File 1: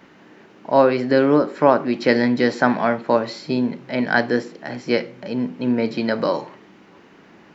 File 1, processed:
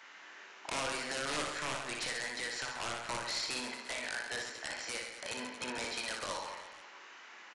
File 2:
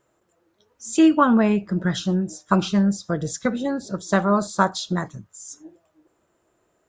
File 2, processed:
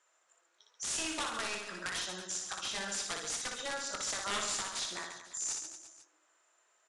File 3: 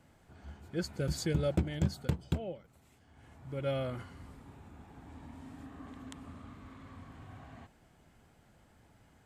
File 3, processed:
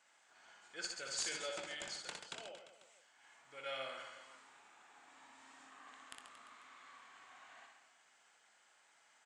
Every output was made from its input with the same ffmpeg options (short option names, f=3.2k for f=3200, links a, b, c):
-filter_complex "[0:a]highpass=1.2k,acompressor=threshold=-29dB:ratio=16,alimiter=level_in=1dB:limit=-24dB:level=0:latency=1:release=291,volume=-1dB,aexciter=amount=1.3:drive=1.3:freq=6.1k,aeval=exprs='(mod(29.9*val(0)+1,2)-1)/29.9':c=same,asplit=2[a][b];[b]adelay=23,volume=-12dB[c];[a][c]amix=inputs=2:normalize=0,aecho=1:1:60|135|228.8|345.9|492.4:0.631|0.398|0.251|0.158|0.1,aresample=22050,aresample=44100"